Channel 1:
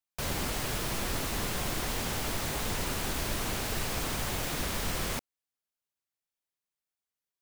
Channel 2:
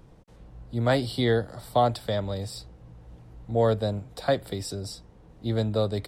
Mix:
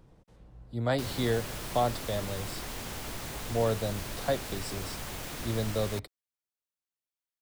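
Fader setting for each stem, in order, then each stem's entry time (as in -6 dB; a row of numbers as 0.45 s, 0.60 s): -6.0 dB, -5.5 dB; 0.80 s, 0.00 s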